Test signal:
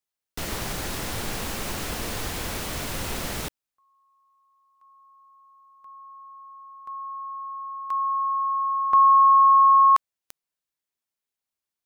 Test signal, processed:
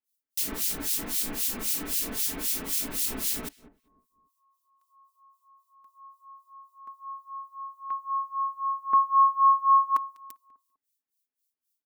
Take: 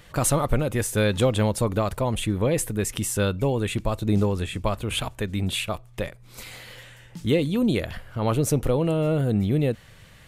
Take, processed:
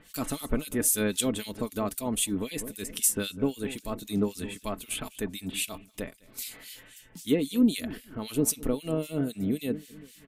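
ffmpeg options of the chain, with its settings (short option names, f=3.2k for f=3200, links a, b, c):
-filter_complex "[0:a]crystalizer=i=5.5:c=0,equalizer=f=290:t=o:w=0.56:g=14.5,asplit=2[a][b];[b]adelay=198,lowpass=f=1k:p=1,volume=-14dB,asplit=2[c][d];[d]adelay=198,lowpass=f=1k:p=1,volume=0.4,asplit=2[e][f];[f]adelay=198,lowpass=f=1k:p=1,volume=0.4,asplit=2[g][h];[h]adelay=198,lowpass=f=1k:p=1,volume=0.4[i];[c][e][g][i]amix=inputs=4:normalize=0[j];[a][j]amix=inputs=2:normalize=0,acrossover=split=2200[k][l];[k]aeval=exprs='val(0)*(1-1/2+1/2*cos(2*PI*3.8*n/s))':c=same[m];[l]aeval=exprs='val(0)*(1-1/2-1/2*cos(2*PI*3.8*n/s))':c=same[n];[m][n]amix=inputs=2:normalize=0,aecho=1:1:4.6:0.48,volume=-8.5dB"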